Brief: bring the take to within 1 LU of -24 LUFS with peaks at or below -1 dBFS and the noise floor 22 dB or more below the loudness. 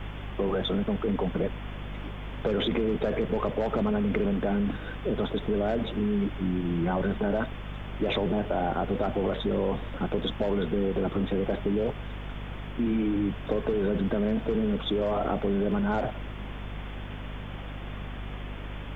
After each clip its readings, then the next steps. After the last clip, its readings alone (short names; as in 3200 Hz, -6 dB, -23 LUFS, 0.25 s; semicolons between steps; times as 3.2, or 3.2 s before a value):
hum 50 Hz; harmonics up to 250 Hz; hum level -36 dBFS; noise floor -38 dBFS; noise floor target -52 dBFS; loudness -29.5 LUFS; peak -14.0 dBFS; loudness target -24.0 LUFS
-> notches 50/100/150/200/250 Hz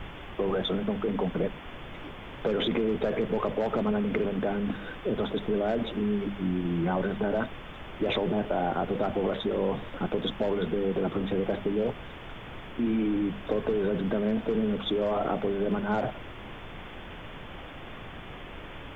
hum none; noise floor -43 dBFS; noise floor target -52 dBFS
-> noise print and reduce 9 dB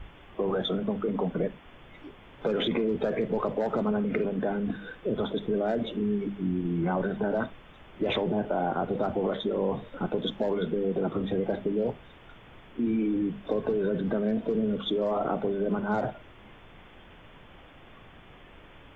noise floor -52 dBFS; loudness -29.5 LUFS; peak -15.0 dBFS; loudness target -24.0 LUFS
-> gain +5.5 dB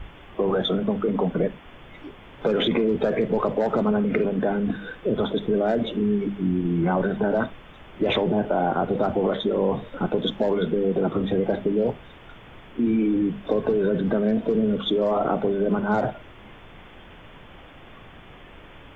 loudness -24.0 LUFS; peak -9.5 dBFS; noise floor -46 dBFS